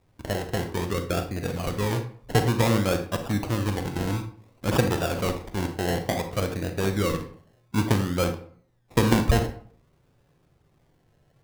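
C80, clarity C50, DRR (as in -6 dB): 14.0 dB, 9.5 dB, 7.0 dB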